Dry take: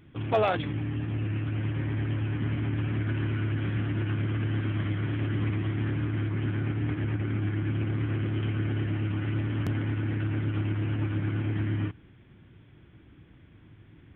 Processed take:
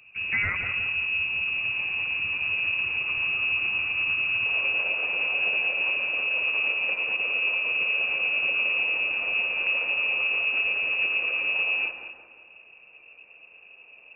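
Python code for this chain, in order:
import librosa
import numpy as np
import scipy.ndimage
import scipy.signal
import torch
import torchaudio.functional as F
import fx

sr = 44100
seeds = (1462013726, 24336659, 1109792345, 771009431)

y = fx.low_shelf(x, sr, hz=350.0, db=6.5)
y = y + 10.0 ** (-12.5 / 20.0) * np.pad(y, (int(224 * sr / 1000.0), 0))[:len(y)]
y = fx.freq_invert(y, sr, carrier_hz=2700)
y = fx.peak_eq(y, sr, hz=fx.steps((0.0, 97.0), (4.46, 530.0)), db=13.0, octaves=1.1)
y = fx.echo_bbd(y, sr, ms=172, stages=2048, feedback_pct=53, wet_db=-7.5)
y = y * 10.0 ** (-4.5 / 20.0)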